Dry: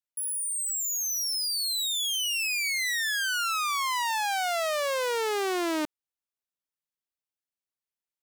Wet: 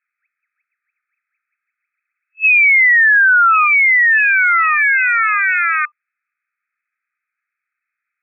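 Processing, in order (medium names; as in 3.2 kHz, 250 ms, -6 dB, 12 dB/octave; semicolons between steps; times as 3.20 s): FFT band-pass 1.2–2.6 kHz; loudness maximiser +31 dB; trim -6 dB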